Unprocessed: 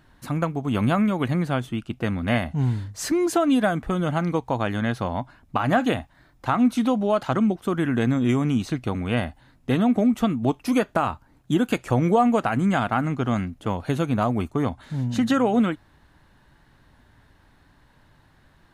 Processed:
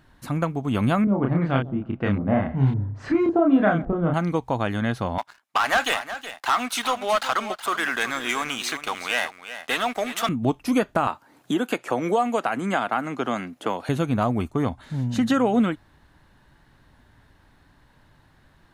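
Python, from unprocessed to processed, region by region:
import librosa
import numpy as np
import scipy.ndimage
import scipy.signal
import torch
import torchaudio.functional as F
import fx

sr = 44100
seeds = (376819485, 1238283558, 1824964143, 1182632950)

y = fx.chain(x, sr, fx.echo_filtered(ms=140, feedback_pct=35, hz=980.0, wet_db=-17.5),
    fx.filter_lfo_lowpass(shape='saw_up', hz=1.8, low_hz=490.0, high_hz=3700.0, q=0.9),
    fx.doubler(ms=30.0, db=-2.5), at=(1.04, 4.14))
y = fx.chain(y, sr, fx.highpass(hz=1100.0, slope=12),
    fx.leveller(passes=3),
    fx.echo_single(ms=370, db=-12.0), at=(5.18, 10.29))
y = fx.chain(y, sr, fx.highpass(hz=330.0, slope=12),
    fx.band_squash(depth_pct=70), at=(11.07, 13.89))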